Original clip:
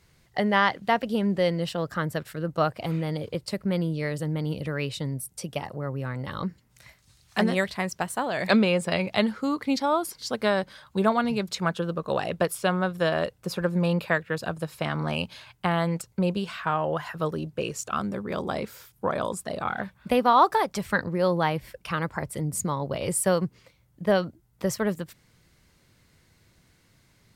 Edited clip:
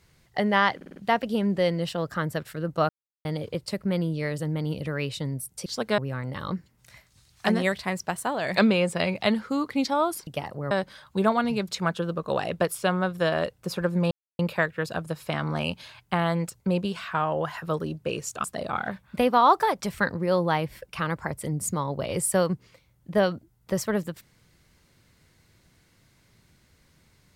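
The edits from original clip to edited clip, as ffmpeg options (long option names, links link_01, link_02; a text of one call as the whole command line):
ffmpeg -i in.wav -filter_complex "[0:a]asplit=13[link_01][link_02][link_03][link_04][link_05][link_06][link_07][link_08][link_09][link_10][link_11][link_12][link_13];[link_01]atrim=end=0.812[link_14];[link_02]atrim=start=0.758:end=0.812[link_15];[link_03]atrim=start=0.758:end=0.812[link_16];[link_04]atrim=start=0.758:end=0.812[link_17];[link_05]atrim=start=0.758:end=2.69,asetpts=PTS-STARTPTS,afade=type=out:start_time=1.928:duration=0.004:curve=hsin[link_18];[link_06]atrim=start=2.69:end=3.05,asetpts=PTS-STARTPTS,volume=0[link_19];[link_07]atrim=start=3.05:end=5.462,asetpts=PTS-STARTPTS,afade=type=in:duration=0.004:curve=hsin[link_20];[link_08]atrim=start=10.188:end=10.512[link_21];[link_09]atrim=start=5.898:end=10.192[link_22];[link_10]atrim=start=5.458:end=5.902[link_23];[link_11]atrim=start=10.508:end=13.91,asetpts=PTS-STARTPTS,afade=type=out:start_time=3.398:duration=0.004:curve=hsin,apad=pad_dur=0.28[link_24];[link_12]atrim=start=13.91:end=17.962,asetpts=PTS-STARTPTS,afade=type=in:duration=0.004:curve=hsin[link_25];[link_13]atrim=start=19.358[link_26];[link_14][link_15]acrossfade=duration=0.004:curve1=hsin:curve2=hsin[link_27];[link_27][link_16]acrossfade=duration=0.004:curve1=hsin:curve2=hsin[link_28];[link_28][link_17]acrossfade=duration=0.004:curve1=hsin:curve2=hsin[link_29];[link_18][link_19][link_20]concat=n=3:v=0:a=1[link_30];[link_29][link_30]acrossfade=duration=0.004:curve1=hsin:curve2=hsin[link_31];[link_31][link_21]acrossfade=duration=0.004:curve1=hsin:curve2=hsin[link_32];[link_32][link_22]acrossfade=duration=0.004:curve1=hsin:curve2=hsin[link_33];[link_33][link_23]acrossfade=duration=0.004:curve1=hsin:curve2=hsin[link_34];[link_24][link_25]concat=n=2:v=0:a=1[link_35];[link_34][link_35]acrossfade=duration=0.004:curve1=hsin:curve2=hsin[link_36];[link_36][link_26]acrossfade=duration=0.004:curve1=hsin:curve2=hsin" out.wav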